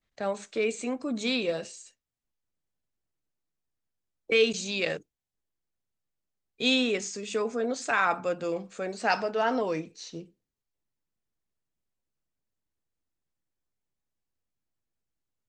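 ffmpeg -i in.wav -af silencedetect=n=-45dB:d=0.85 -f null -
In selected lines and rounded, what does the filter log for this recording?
silence_start: 1.88
silence_end: 4.29 | silence_duration: 2.42
silence_start: 4.99
silence_end: 6.60 | silence_duration: 1.61
silence_start: 10.25
silence_end: 15.49 | silence_duration: 5.24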